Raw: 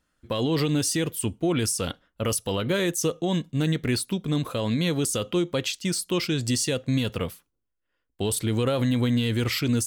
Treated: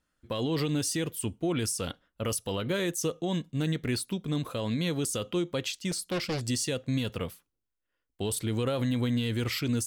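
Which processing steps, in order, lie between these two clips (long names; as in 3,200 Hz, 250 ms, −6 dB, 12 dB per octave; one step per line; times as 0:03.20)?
0:05.91–0:06.41: highs frequency-modulated by the lows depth 0.82 ms
level −5 dB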